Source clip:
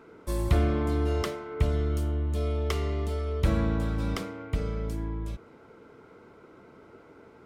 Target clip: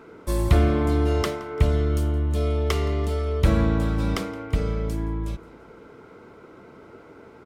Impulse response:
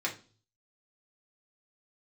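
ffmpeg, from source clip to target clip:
-af "aecho=1:1:170|340|510:0.0794|0.0389|0.0191,volume=1.88"

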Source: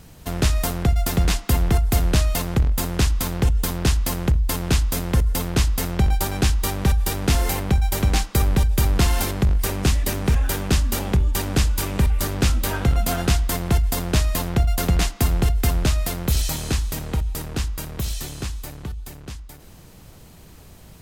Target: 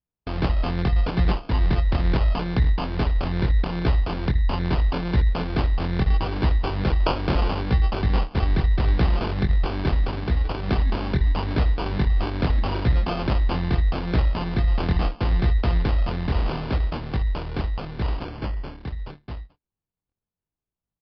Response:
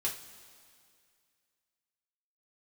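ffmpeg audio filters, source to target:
-filter_complex "[0:a]asettb=1/sr,asplit=3[s0][s1][s2];[s0]atrim=end=6.804[s3];[s1]atrim=start=6.8:end=7.44,asetpts=PTS-STARTPTS,afade=t=in:d=0.004:c=qsin,afade=t=out:st=0.636:d=0.004:c=qsin,aemphasis=mode=production:type=50kf[s4];[s2]atrim=start=7.436[s5];[s3][s4]acrossfade=d=0.004:c1=hsin:c2=qsin[s6];[s6][s5]acrossfade=d=0.004:c1=qsin:c2=hsin,agate=range=0.00447:threshold=0.0158:ratio=16:detection=peak,equalizer=f=600:t=o:w=0.21:g=-12.5,asplit=2[s7][s8];[s8]alimiter=limit=0.141:level=0:latency=1:release=116,volume=1.19[s9];[s7][s9]amix=inputs=2:normalize=0,asplit=3[s10][s11][s12];[s10]afade=t=out:st=10.06:d=0.02[s13];[s11]tremolo=f=22:d=0.519,afade=t=in:st=10.06:d=0.02,afade=t=out:st=10.65:d=0.02[s14];[s12]afade=t=in:st=10.65:d=0.02[s15];[s13][s14][s15]amix=inputs=3:normalize=0,flanger=delay=16.5:depth=7.5:speed=0.77,acrusher=samples=23:mix=1:aa=0.000001,asettb=1/sr,asplit=3[s16][s17][s18];[s16]atrim=end=18.254[s19];[s17]atrim=start=18.25:end=18.79,asetpts=PTS-STARTPTS,afade=t=in:d=0.004:c=qsin,afade=t=out:st=0.536:d=0.004:c=qsin,asuperstop=centerf=3800:order=4:qfactor=7.5[s20];[s18]atrim=start=18.786[s21];[s19][s20]acrossfade=d=0.004:c1=hsin:c2=qsin[s22];[s22][s21]acrossfade=d=0.004:c1=qsin:c2=hsin,aresample=11025,aresample=44100,volume=0.668"

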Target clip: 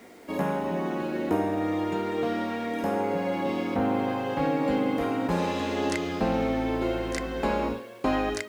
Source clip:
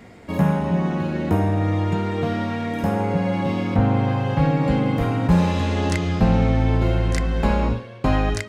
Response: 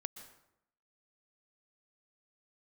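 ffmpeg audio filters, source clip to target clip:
-af "lowshelf=f=200:t=q:w=1.5:g=-13,acrusher=bits=8:mix=0:aa=0.000001,volume=0.631"

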